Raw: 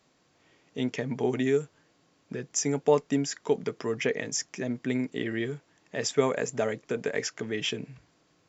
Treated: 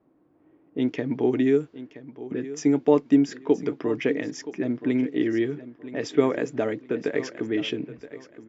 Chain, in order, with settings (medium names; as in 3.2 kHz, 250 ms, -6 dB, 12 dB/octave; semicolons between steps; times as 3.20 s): level-controlled noise filter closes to 960 Hz, open at -24.5 dBFS; low-pass 4 kHz 12 dB/octave; peaking EQ 310 Hz +14.5 dB 0.44 oct; on a send: feedback delay 973 ms, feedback 28%, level -15 dB